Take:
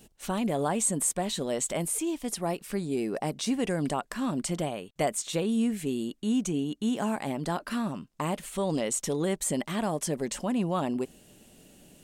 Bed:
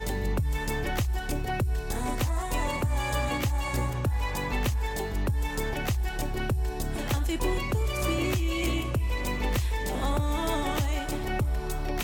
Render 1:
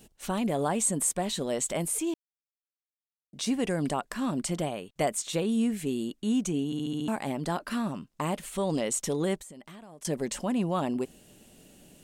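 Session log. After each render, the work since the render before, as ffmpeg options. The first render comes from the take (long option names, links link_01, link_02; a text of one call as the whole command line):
ffmpeg -i in.wav -filter_complex "[0:a]asettb=1/sr,asplit=3[link_01][link_02][link_03];[link_01]atrim=end=9.374[link_04];[link_02]atrim=start=9.37:end=10.05,asetpts=PTS-STARTPTS,afade=type=in:duration=0.004:curve=qsin,afade=type=out:start_time=0.676:duration=0.004:curve=qsin,acompressor=threshold=-43dB:ratio=12:attack=3.2:release=140:knee=1:detection=peak[link_05];[link_03]atrim=start=10.046[link_06];[link_04][link_05]acrossfade=duration=0.004:curve1=hsin:curve2=qsin[link_07];[link_07][link_06]acrossfade=duration=0.004:curve1=qsin:curve2=hsin,asplit=9[link_08][link_09][link_10][link_11][link_12][link_13][link_14][link_15][link_16];[link_08]atrim=end=2.14,asetpts=PTS-STARTPTS,afade=type=out:start_time=2.136:duration=0.004:curve=hsin[link_17];[link_09]atrim=start=2.14:end=3.33,asetpts=PTS-STARTPTS,volume=0[link_18];[link_10]atrim=start=3.33:end=6.732,asetpts=PTS-STARTPTS,afade=type=in:duration=0.004:curve=hsin[link_19];[link_11]atrim=start=6.658:end=6.732[link_20];[link_12]atrim=start=6.658:end=6.732[link_21];[link_13]atrim=start=6.658:end=6.732[link_22];[link_14]atrim=start=6.658:end=6.732[link_23];[link_15]atrim=start=6.658:end=6.732[link_24];[link_16]atrim=start=7.078[link_25];[link_17][link_18][link_19]concat=n=3:v=0:a=1[link_26];[link_26][link_20]acrossfade=duration=0.004:curve1=hsin:curve2=hsin[link_27];[link_27][link_21]acrossfade=duration=0.004:curve1=hsin:curve2=hsin[link_28];[link_28][link_22]acrossfade=duration=0.004:curve1=hsin:curve2=hsin[link_29];[link_29][link_23]acrossfade=duration=0.004:curve1=hsin:curve2=hsin[link_30];[link_30][link_24]acrossfade=duration=0.004:curve1=hsin:curve2=hsin[link_31];[link_31][link_25]acrossfade=duration=0.004:curve1=hsin:curve2=hsin" out.wav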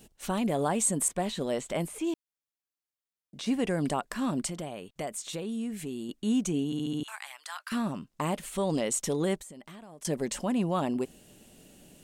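ffmpeg -i in.wav -filter_complex "[0:a]asettb=1/sr,asplit=3[link_01][link_02][link_03];[link_01]atrim=end=1.084[link_04];[link_02]atrim=start=1.08:end=3.78,asetpts=PTS-STARTPTS,afade=type=in:duration=0.004:curve=qsin,afade=type=out:start_time=2.696:duration=0.004:curve=qsin,acrossover=split=3600[link_05][link_06];[link_06]acompressor=threshold=-43dB:ratio=4:attack=1:release=60[link_07];[link_05][link_07]amix=inputs=2:normalize=0[link_08];[link_03]atrim=start=3.776[link_09];[link_04][link_08]acrossfade=duration=0.004:curve1=hsin:curve2=qsin[link_10];[link_10][link_09]acrossfade=duration=0.004:curve1=qsin:curve2=hsin,asettb=1/sr,asplit=3[link_11][link_12][link_13];[link_11]atrim=end=4.474[link_14];[link_12]atrim=start=4.47:end=6.09,asetpts=PTS-STARTPTS,afade=type=in:duration=0.004:curve=qsin,afade=type=out:start_time=1.616:duration=0.004:curve=qsin,acompressor=threshold=-37dB:ratio=2:attack=3.2:release=140:knee=1:detection=peak[link_15];[link_13]atrim=start=6.086[link_16];[link_14][link_15]acrossfade=duration=0.004:curve1=hsin:curve2=qsin[link_17];[link_17][link_16]acrossfade=duration=0.004:curve1=qsin:curve2=hsin,asettb=1/sr,asplit=3[link_18][link_19][link_20];[link_18]atrim=end=7.034[link_21];[link_19]atrim=start=7.03:end=7.72,asetpts=PTS-STARTPTS,afade=type=in:duration=0.004:curve=qsin,afade=type=out:start_time=0.686:duration=0.004:curve=qsin,highpass=frequency=1200:width=0.5412,highpass=frequency=1200:width=1.3066[link_22];[link_20]atrim=start=7.716[link_23];[link_21][link_22]acrossfade=duration=0.004:curve1=hsin:curve2=qsin[link_24];[link_24][link_23]acrossfade=duration=0.004:curve1=qsin:curve2=hsin" out.wav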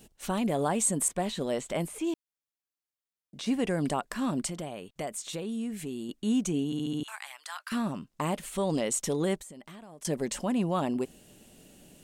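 ffmpeg -i in.wav -af anull out.wav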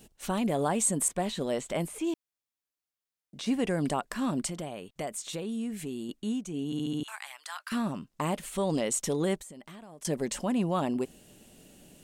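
ffmpeg -i in.wav -filter_complex "[0:a]asplit=3[link_01][link_02][link_03];[link_01]atrim=end=6.44,asetpts=PTS-STARTPTS,afade=type=out:start_time=6.13:duration=0.31:silence=0.316228[link_04];[link_02]atrim=start=6.44:end=6.46,asetpts=PTS-STARTPTS,volume=-10dB[link_05];[link_03]atrim=start=6.46,asetpts=PTS-STARTPTS,afade=type=in:duration=0.31:silence=0.316228[link_06];[link_04][link_05][link_06]concat=n=3:v=0:a=1" out.wav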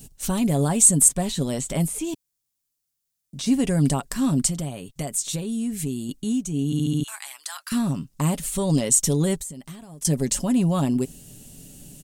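ffmpeg -i in.wav -af "bass=frequency=250:gain=14,treble=frequency=4000:gain=13,aecho=1:1:7.3:0.36" out.wav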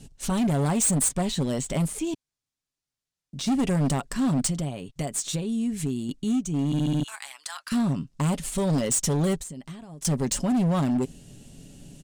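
ffmpeg -i in.wav -af "adynamicsmooth=sensitivity=6:basefreq=5900,asoftclip=type=hard:threshold=-20dB" out.wav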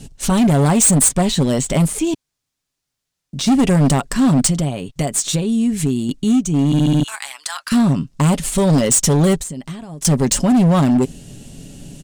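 ffmpeg -i in.wav -af "volume=10dB" out.wav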